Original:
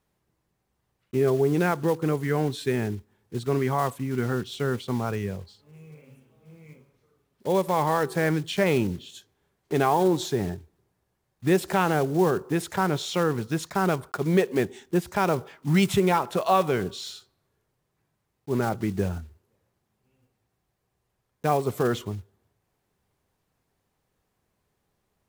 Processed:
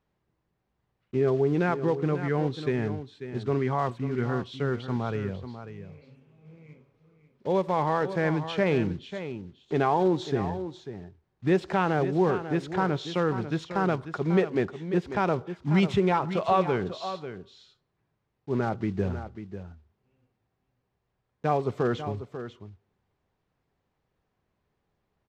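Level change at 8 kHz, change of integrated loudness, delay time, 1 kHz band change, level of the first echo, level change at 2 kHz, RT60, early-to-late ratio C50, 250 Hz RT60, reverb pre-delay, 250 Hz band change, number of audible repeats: under -10 dB, -2.0 dB, 543 ms, -2.0 dB, -11.0 dB, -2.5 dB, no reverb, no reverb, no reverb, no reverb, -1.5 dB, 1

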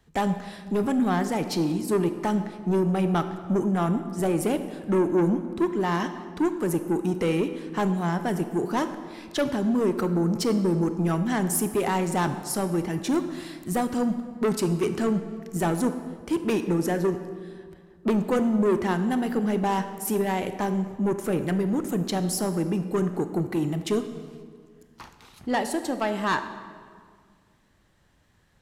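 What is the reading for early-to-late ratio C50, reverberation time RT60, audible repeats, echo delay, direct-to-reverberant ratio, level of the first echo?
10.0 dB, 1.9 s, no echo, no echo, 9.0 dB, no echo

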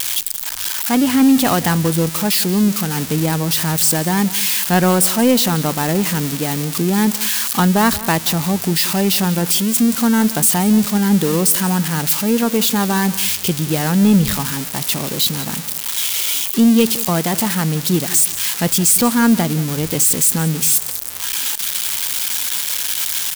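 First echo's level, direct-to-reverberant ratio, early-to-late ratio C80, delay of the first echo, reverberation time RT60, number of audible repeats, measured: -17.0 dB, no reverb, no reverb, 180 ms, no reverb, 2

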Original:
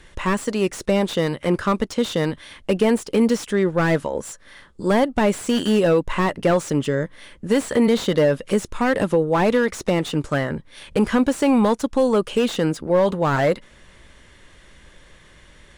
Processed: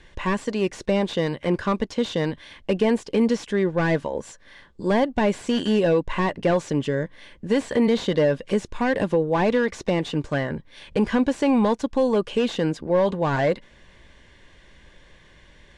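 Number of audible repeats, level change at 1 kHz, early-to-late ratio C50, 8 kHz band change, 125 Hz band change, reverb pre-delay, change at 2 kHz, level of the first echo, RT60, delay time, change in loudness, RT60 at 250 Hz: no echo, -3.0 dB, no reverb, -8.0 dB, -2.5 dB, no reverb, -2.5 dB, no echo, no reverb, no echo, -2.5 dB, no reverb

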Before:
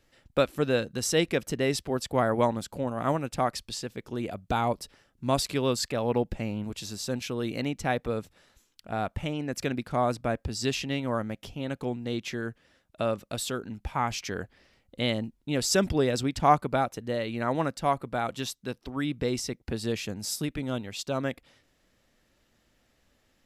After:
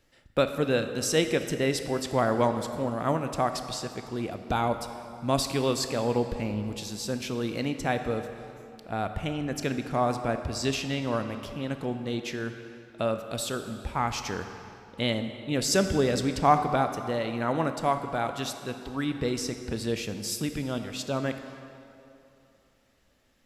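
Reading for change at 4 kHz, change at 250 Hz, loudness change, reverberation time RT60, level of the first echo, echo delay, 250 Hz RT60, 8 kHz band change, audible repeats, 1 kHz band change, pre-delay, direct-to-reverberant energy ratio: +0.5 dB, +1.0 dB, +0.5 dB, 2.8 s, no echo, no echo, 2.6 s, +0.5 dB, no echo, +1.0 dB, 16 ms, 7.5 dB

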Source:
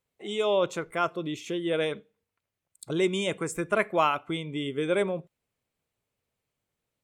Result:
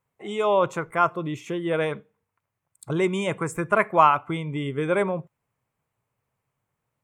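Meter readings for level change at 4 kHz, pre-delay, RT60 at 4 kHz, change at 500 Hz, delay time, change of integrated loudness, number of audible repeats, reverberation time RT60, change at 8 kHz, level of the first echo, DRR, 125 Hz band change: -3.5 dB, no reverb, no reverb, +3.0 dB, no echo, +4.5 dB, no echo, no reverb, -1.0 dB, no echo, no reverb, +6.5 dB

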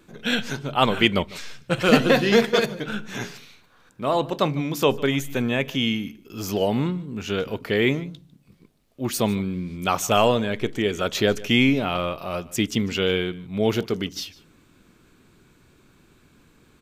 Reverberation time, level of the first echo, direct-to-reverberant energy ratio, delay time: no reverb, -21.0 dB, no reverb, 150 ms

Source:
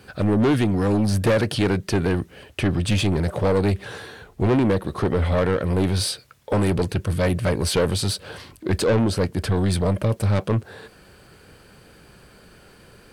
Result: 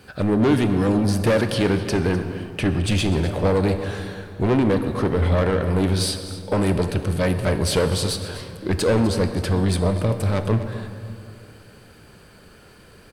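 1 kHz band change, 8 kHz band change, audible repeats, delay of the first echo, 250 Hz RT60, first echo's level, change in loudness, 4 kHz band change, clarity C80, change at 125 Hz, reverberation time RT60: +1.0 dB, +0.5 dB, 1, 252 ms, 2.9 s, -15.0 dB, +0.5 dB, +0.5 dB, 9.0 dB, +0.5 dB, 2.5 s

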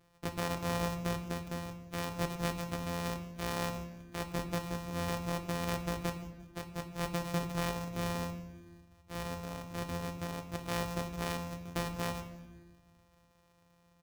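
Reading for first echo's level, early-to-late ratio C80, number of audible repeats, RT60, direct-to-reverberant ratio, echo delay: -20.5 dB, 11.5 dB, 2, 1.2 s, 6.0 dB, 174 ms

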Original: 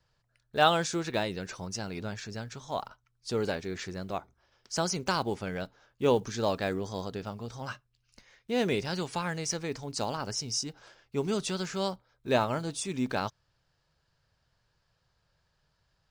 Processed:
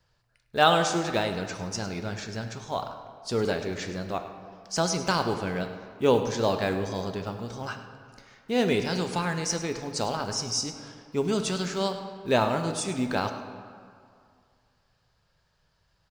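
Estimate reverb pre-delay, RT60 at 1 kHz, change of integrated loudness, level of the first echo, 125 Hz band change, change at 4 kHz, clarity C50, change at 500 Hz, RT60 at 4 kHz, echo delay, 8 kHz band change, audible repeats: 4 ms, 2.4 s, +4.0 dB, -15.0 dB, +4.0 dB, +3.5 dB, 7.5 dB, +4.0 dB, 1.3 s, 104 ms, +3.5 dB, 1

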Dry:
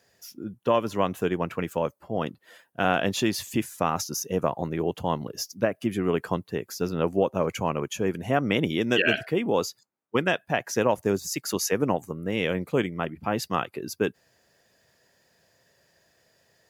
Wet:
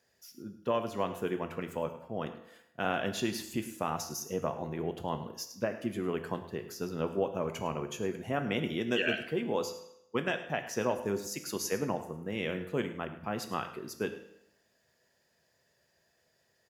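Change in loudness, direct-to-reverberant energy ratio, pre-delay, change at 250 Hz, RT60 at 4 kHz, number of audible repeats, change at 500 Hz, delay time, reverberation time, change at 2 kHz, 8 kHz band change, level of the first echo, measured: -7.5 dB, 6.5 dB, 4 ms, -7.5 dB, 0.75 s, 1, -7.5 dB, 105 ms, 0.80 s, -7.5 dB, -7.5 dB, -16.0 dB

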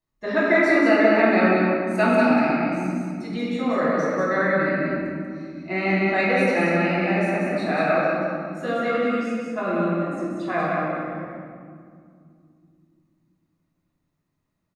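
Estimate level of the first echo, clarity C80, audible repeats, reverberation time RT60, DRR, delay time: -3.0 dB, -2.5 dB, 1, 2.2 s, -9.5 dB, 188 ms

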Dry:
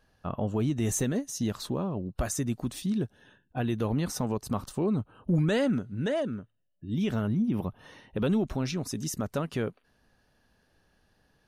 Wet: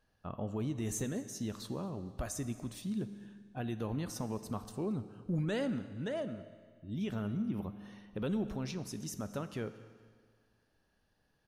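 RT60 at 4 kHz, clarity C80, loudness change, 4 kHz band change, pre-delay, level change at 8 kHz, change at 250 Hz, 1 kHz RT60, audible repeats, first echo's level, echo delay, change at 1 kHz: 1.7 s, 13.0 dB, -8.0 dB, -8.0 dB, 10 ms, -8.0 dB, -8.0 dB, 1.9 s, 2, -23.0 dB, 227 ms, -8.0 dB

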